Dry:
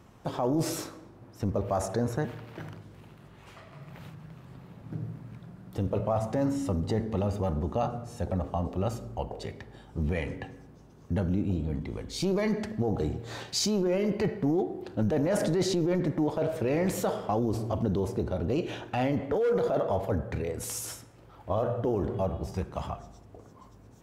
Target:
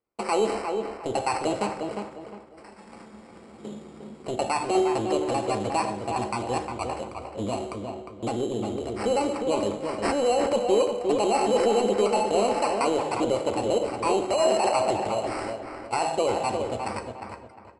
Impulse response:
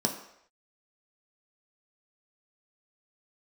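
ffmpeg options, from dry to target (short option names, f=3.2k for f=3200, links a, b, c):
-filter_complex "[0:a]agate=range=-33dB:threshold=-49dB:ratio=16:detection=peak,equalizer=f=200:w=4.2:g=-15,acrusher=samples=17:mix=1:aa=0.000001,asplit=2[a][b];[b]adelay=480,lowpass=f=1.8k:p=1,volume=-5dB,asplit=2[c][d];[d]adelay=480,lowpass=f=1.8k:p=1,volume=0.32,asplit=2[e][f];[f]adelay=480,lowpass=f=1.8k:p=1,volume=0.32,asplit=2[g][h];[h]adelay=480,lowpass=f=1.8k:p=1,volume=0.32[i];[a][c][e][g][i]amix=inputs=5:normalize=0,asplit=2[j][k];[1:a]atrim=start_sample=2205[l];[k][l]afir=irnorm=-1:irlink=0,volume=-10dB[m];[j][m]amix=inputs=2:normalize=0,aresample=16000,aresample=44100,asetrate=59535,aresample=44100,volume=-1.5dB"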